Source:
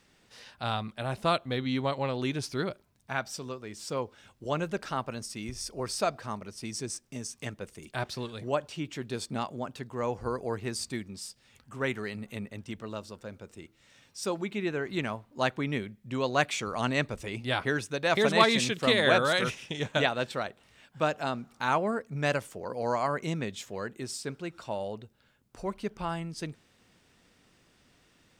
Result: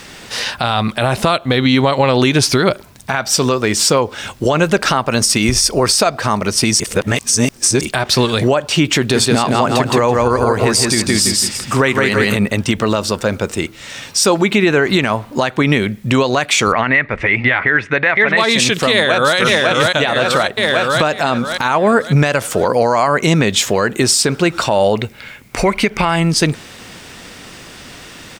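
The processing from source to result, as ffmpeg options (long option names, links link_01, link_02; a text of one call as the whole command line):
ffmpeg -i in.wav -filter_complex "[0:a]asettb=1/sr,asplit=3[link_01][link_02][link_03];[link_01]atrim=end=8.994[link_04];[link_02]atrim=start=8.99:end=12.36,asetpts=PTS-STARTPTS,afade=type=in:duration=0.004:curve=qsin,afade=type=out:start_time=3.366:duration=0.004:curve=qsin,aecho=1:1:166|332|498|664:0.708|0.205|0.0595|0.0173,atrim=end_sample=148617[link_05];[link_03]atrim=start=12.356[link_06];[link_04][link_05]acrossfade=duration=0.004:curve1=hsin:curve2=qsin[link_07];[link_07][link_06]acrossfade=duration=0.004:curve1=qsin:curve2=hsin,asettb=1/sr,asplit=3[link_08][link_09][link_10];[link_08]atrim=end=16.724[link_11];[link_09]atrim=start=16.72:end=18.37,asetpts=PTS-STARTPTS,afade=type=in:duration=0.004:curve=qsin,afade=type=out:start_time=1.646:duration=0.004:curve=qsin,lowpass=frequency=2000:width_type=q:width=5.4[link_12];[link_10]atrim=start=18.366[link_13];[link_11][link_12]acrossfade=duration=0.004:curve1=hsin:curve2=qsin[link_14];[link_14][link_13]acrossfade=duration=0.004:curve1=qsin:curve2=hsin,asplit=2[link_15][link_16];[link_16]afade=type=in:start_time=18.92:duration=0.01,afade=type=out:start_time=19.37:duration=0.01,aecho=0:1:550|1100|1650|2200|2750|3300:0.530884|0.265442|0.132721|0.0663606|0.0331803|0.0165901[link_17];[link_15][link_17]amix=inputs=2:normalize=0,asettb=1/sr,asplit=3[link_18][link_19][link_20];[link_18]atrim=end=24.954[link_21];[link_19]atrim=start=24.95:end=26.16,asetpts=PTS-STARTPTS,afade=type=in:duration=0.004:curve=qsin,afade=type=out:start_time=1.206:duration=0.004:curve=qsin,equalizer=frequency=2200:width_type=o:width=0.38:gain=14[link_22];[link_20]atrim=start=26.156[link_23];[link_21][link_22]acrossfade=duration=0.004:curve1=hsin:curve2=qsin[link_24];[link_24][link_23]acrossfade=duration=0.004:curve1=qsin:curve2=hsin,asplit=3[link_25][link_26][link_27];[link_25]atrim=end=6.802[link_28];[link_26]atrim=start=6.798:end=7.812,asetpts=PTS-STARTPTS,areverse[link_29];[link_27]atrim=start=7.808[link_30];[link_28][link_29]acrossfade=duration=0.004:curve1=hsin:curve2=hsin[link_31];[link_31][link_30]acrossfade=duration=0.004:curve1=hsin:curve2=hsin,lowshelf=frequency=500:gain=-4.5,acompressor=threshold=-37dB:ratio=6,alimiter=level_in=32dB:limit=-1dB:release=50:level=0:latency=1,volume=-2dB" out.wav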